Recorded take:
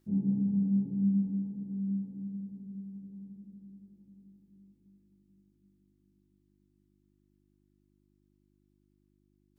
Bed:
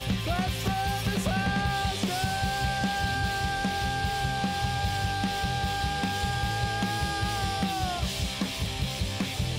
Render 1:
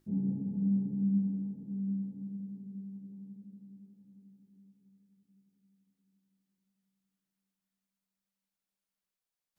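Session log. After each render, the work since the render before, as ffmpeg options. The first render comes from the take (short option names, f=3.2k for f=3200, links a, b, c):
-af "bandreject=f=50:t=h:w=4,bandreject=f=100:t=h:w=4,bandreject=f=150:t=h:w=4,bandreject=f=200:t=h:w=4,bandreject=f=250:t=h:w=4,bandreject=f=300:t=h:w=4,bandreject=f=350:t=h:w=4"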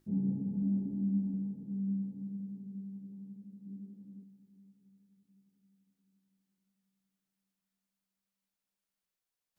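-filter_complex "[0:a]asettb=1/sr,asplit=3[a][b][c];[a]atrim=end=0.624[d];[b]atrim=start=0.62:end=1.34,asetpts=PTS-STARTPTS,afade=t=in:d=0.004:c=qsin,afade=t=out:st=0.716:d=0.004:c=qsin,aecho=1:1:3.2:0.65,atrim=end_sample=31752[e];[c]atrim=start=1.336[f];[d][e]acrossfade=d=0.004:c1=hsin:c2=qsin[g];[g][f]acrossfade=d=0.004:c1=qsin:c2=hsin,asplit=3[h][i][j];[h]afade=t=out:st=3.65:d=0.02[k];[i]equalizer=f=310:t=o:w=2.1:g=10,afade=t=in:st=3.65:d=0.02,afade=t=out:st=4.23:d=0.02[l];[j]afade=t=in:st=4.23:d=0.02[m];[k][l][m]amix=inputs=3:normalize=0"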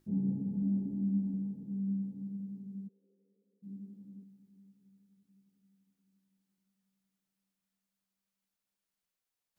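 -filter_complex "[0:a]asplit=3[a][b][c];[a]afade=t=out:st=2.87:d=0.02[d];[b]asuperpass=centerf=470:order=4:qfactor=2.6,afade=t=in:st=2.87:d=0.02,afade=t=out:st=3.62:d=0.02[e];[c]afade=t=in:st=3.62:d=0.02[f];[d][e][f]amix=inputs=3:normalize=0"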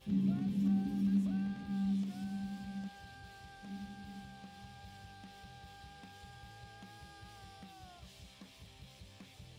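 -filter_complex "[1:a]volume=-25dB[a];[0:a][a]amix=inputs=2:normalize=0"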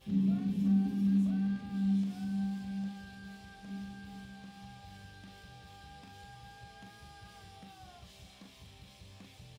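-filter_complex "[0:a]asplit=2[a][b];[b]adelay=41,volume=-5.5dB[c];[a][c]amix=inputs=2:normalize=0,asplit=2[d][e];[e]adelay=475,lowpass=f=2k:p=1,volume=-14dB,asplit=2[f][g];[g]adelay=475,lowpass=f=2k:p=1,volume=0.35,asplit=2[h][i];[i]adelay=475,lowpass=f=2k:p=1,volume=0.35[j];[d][f][h][j]amix=inputs=4:normalize=0"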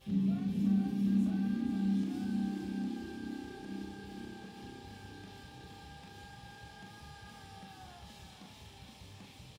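-filter_complex "[0:a]asplit=2[a][b];[b]adelay=28,volume=-11.5dB[c];[a][c]amix=inputs=2:normalize=0,asplit=2[d][e];[e]asplit=8[f][g][h][i][j][k][l][m];[f]adelay=470,afreqshift=33,volume=-7dB[n];[g]adelay=940,afreqshift=66,volume=-11.3dB[o];[h]adelay=1410,afreqshift=99,volume=-15.6dB[p];[i]adelay=1880,afreqshift=132,volume=-19.9dB[q];[j]adelay=2350,afreqshift=165,volume=-24.2dB[r];[k]adelay=2820,afreqshift=198,volume=-28.5dB[s];[l]adelay=3290,afreqshift=231,volume=-32.8dB[t];[m]adelay=3760,afreqshift=264,volume=-37.1dB[u];[n][o][p][q][r][s][t][u]amix=inputs=8:normalize=0[v];[d][v]amix=inputs=2:normalize=0"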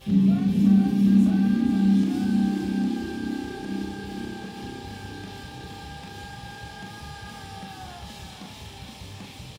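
-af "volume=12dB"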